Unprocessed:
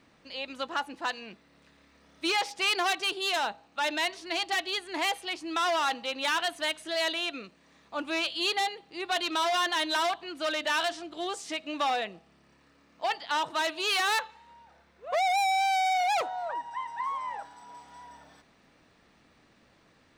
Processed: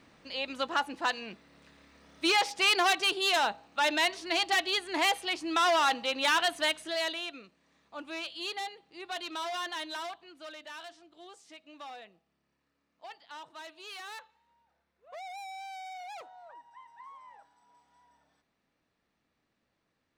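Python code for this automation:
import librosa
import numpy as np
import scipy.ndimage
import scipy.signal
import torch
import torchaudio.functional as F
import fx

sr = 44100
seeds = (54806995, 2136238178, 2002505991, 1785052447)

y = fx.gain(x, sr, db=fx.line((6.65, 2.0), (7.43, -8.5), (9.74, -8.5), (10.71, -17.0)))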